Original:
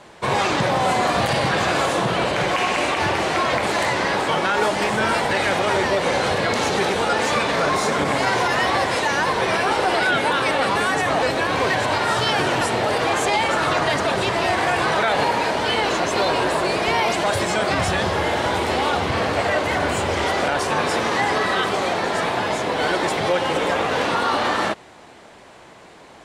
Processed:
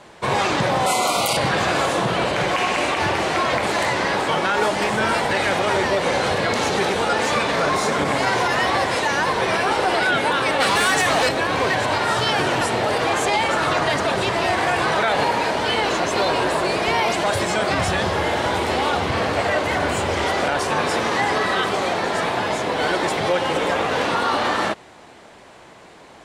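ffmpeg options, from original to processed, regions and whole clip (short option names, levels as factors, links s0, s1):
-filter_complex "[0:a]asettb=1/sr,asplit=3[s0][s1][s2];[s0]atrim=end=0.864[s3];[s1]atrim=start=0.86:end=1.37,asetpts=PTS-STARTPTS,afade=t=in:d=0.004:c=qsin,afade=t=out:st=0.506:d=0.004:c=qsin,asuperstop=centerf=1700:order=20:qfactor=3.5,aemphasis=mode=production:type=bsi[s4];[s2]atrim=start=1.366[s5];[s3][s4]acrossfade=d=0.004:c1=hsin:c2=qsin[s6];[s6][s5]acrossfade=d=0.004:c1=qsin:c2=hsin,asettb=1/sr,asplit=3[s7][s8][s9];[s7]atrim=end=10.604[s10];[s8]atrim=start=10.6:end=11.29,asetpts=PTS-STARTPTS,afade=t=in:d=0.004:c=qsin,afade=t=out:st=0.686:d=0.004:c=qsin,highshelf=f=2200:g=9.5,volume=3.76,asoftclip=hard,volume=0.266[s11];[s9]atrim=start=11.286[s12];[s10][s11]acrossfade=d=0.004:c1=hsin:c2=qsin[s13];[s13][s12]acrossfade=d=0.004:c1=qsin:c2=hsin"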